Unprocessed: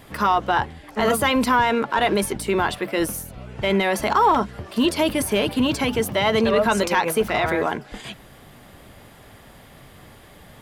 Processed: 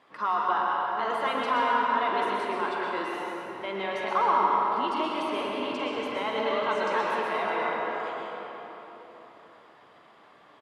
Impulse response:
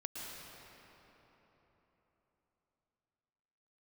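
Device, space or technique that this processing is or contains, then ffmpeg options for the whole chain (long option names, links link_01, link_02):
station announcement: -filter_complex "[0:a]highpass=330,lowpass=4300,equalizer=frequency=1100:width_type=o:width=0.57:gain=8,aecho=1:1:46.65|128.3:0.282|0.355[link_01];[1:a]atrim=start_sample=2205[link_02];[link_01][link_02]afir=irnorm=-1:irlink=0,volume=-9dB"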